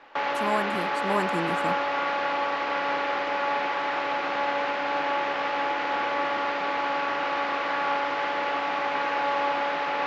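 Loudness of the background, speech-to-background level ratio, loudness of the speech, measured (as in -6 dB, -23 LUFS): -27.0 LUFS, -4.5 dB, -31.5 LUFS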